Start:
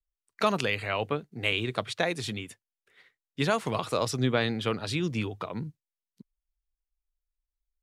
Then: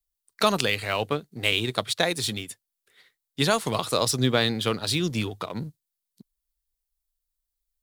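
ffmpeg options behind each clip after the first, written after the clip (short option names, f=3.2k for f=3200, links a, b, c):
-filter_complex "[0:a]asplit=2[a][b];[b]aeval=exprs='sgn(val(0))*max(abs(val(0))-0.0112,0)':c=same,volume=-6dB[c];[a][c]amix=inputs=2:normalize=0,aexciter=amount=1.9:drive=7.3:freq=3.5k"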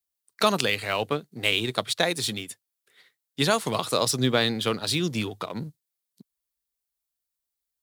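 -af "highpass=110"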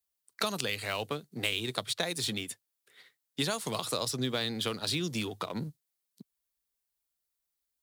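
-filter_complex "[0:a]acrossover=split=120|3900[a][b][c];[a]acompressor=threshold=-48dB:ratio=4[d];[b]acompressor=threshold=-32dB:ratio=4[e];[c]acompressor=threshold=-35dB:ratio=4[f];[d][e][f]amix=inputs=3:normalize=0"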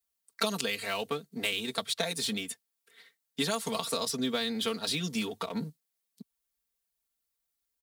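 -af "aecho=1:1:4.4:0.87,volume=-1.5dB"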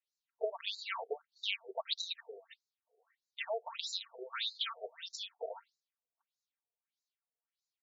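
-af "afftfilt=real='re*between(b*sr/1024,530*pow(5400/530,0.5+0.5*sin(2*PI*1.6*pts/sr))/1.41,530*pow(5400/530,0.5+0.5*sin(2*PI*1.6*pts/sr))*1.41)':imag='im*between(b*sr/1024,530*pow(5400/530,0.5+0.5*sin(2*PI*1.6*pts/sr))/1.41,530*pow(5400/530,0.5+0.5*sin(2*PI*1.6*pts/sr))*1.41)':win_size=1024:overlap=0.75,volume=-1dB"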